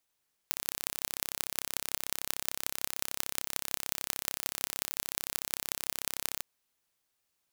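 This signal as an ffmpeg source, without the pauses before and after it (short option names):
-f lavfi -i "aevalsrc='0.841*eq(mod(n,1320),0)*(0.5+0.5*eq(mod(n,7920),0))':d=5.9:s=44100"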